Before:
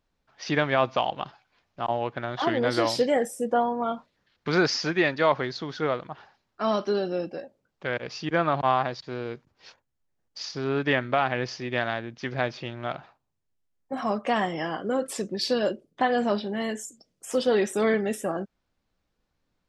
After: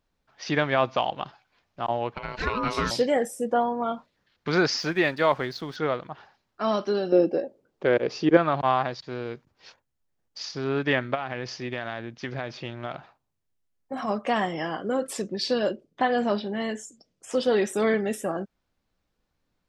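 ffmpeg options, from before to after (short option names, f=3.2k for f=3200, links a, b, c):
-filter_complex "[0:a]asettb=1/sr,asplit=3[a][b][c];[a]atrim=end=2.144[d];[b]atrim=start=2.14:end=2.91,asetpts=PTS-STARTPTS,afade=t=in:d=0.004:c=qsin,afade=t=out:st=0.766:d=0.004:c=qsin,aeval=exprs='val(0)*sin(2*PI*750*n/s)':c=same[e];[c]atrim=start=2.906[f];[d][e]acrossfade=d=0.004:c1=hsin:c2=qsin[g];[g][f]acrossfade=d=0.004:c1=qsin:c2=hsin,asettb=1/sr,asplit=3[h][i][j];[h]atrim=end=4.774[k];[i]atrim=start=4.77:end=5.76,asetpts=PTS-STARTPTS,afade=t=in:d=0.004:c=qsin,afade=t=out:st=0.986:d=0.004:c=qsin,aeval=exprs='sgn(val(0))*max(abs(val(0))-0.00237,0)':c=same[l];[j]atrim=start=5.756[m];[k][l]acrossfade=d=0.004:c1=hsin:c2=qsin[n];[n][m]acrossfade=d=0.004:c1=qsin:c2=hsin,asettb=1/sr,asplit=3[o][p][q];[o]atrim=end=7.124[r];[p]atrim=start=7.12:end=8.37,asetpts=PTS-STARTPTS,afade=t=in:d=0.004:c=qsin,afade=t=out:st=1.246:d=0.004:c=qsin,equalizer=f=390:w=0.89:g=13[s];[q]atrim=start=8.366[t];[r][s]acrossfade=d=0.004:c1=hsin:c2=qsin[u];[u][t]acrossfade=d=0.004:c1=qsin:c2=hsin,asplit=3[v][w][x];[v]afade=t=out:st=11.14:d=0.02[y];[w]acompressor=threshold=-26dB:ratio=6:attack=3.2:release=140:knee=1:detection=peak,afade=t=in:st=11.14:d=0.02,afade=t=out:st=14.07:d=0.02[z];[x]afade=t=in:st=14.07:d=0.02[aa];[y][z][aa]amix=inputs=3:normalize=0,asettb=1/sr,asplit=3[ab][ac][ad];[ab]atrim=end=15.224[ae];[ac]atrim=start=15.22:end=17.43,asetpts=PTS-STARTPTS,afade=t=in:d=0.004:c=qsin,afade=t=out:st=2.206:d=0.004:c=qsin,lowpass=7k[af];[ad]atrim=start=17.426[ag];[ae][af]acrossfade=d=0.004:c1=hsin:c2=qsin[ah];[ah][ag]acrossfade=d=0.004:c1=qsin:c2=hsin"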